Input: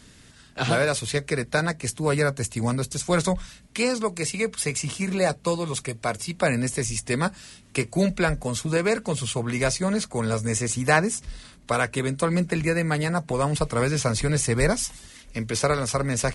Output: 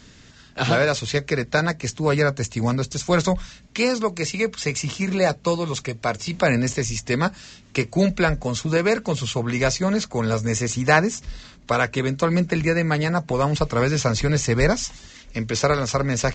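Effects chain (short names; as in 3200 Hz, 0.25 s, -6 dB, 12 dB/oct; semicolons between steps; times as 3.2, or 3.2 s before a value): 6.26–6.73 transient shaper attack 0 dB, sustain +7 dB; downsampling 16000 Hz; gain +3 dB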